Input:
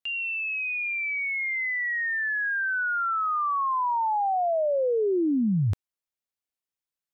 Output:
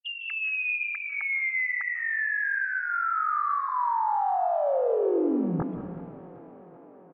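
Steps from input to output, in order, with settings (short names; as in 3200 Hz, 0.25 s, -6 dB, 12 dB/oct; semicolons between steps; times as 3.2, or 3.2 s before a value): sine-wave speech; 1.55–3.69 HPF 990 Hz 12 dB/oct; comb 2.4 ms, depth 71%; limiter -27 dBFS, peak gain reduction 16 dB; air absorption 410 m; tape echo 0.381 s, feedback 86%, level -18 dB, low-pass 2600 Hz; reverb RT60 1.4 s, pre-delay 0.143 s, DRR 8 dB; gain +7.5 dB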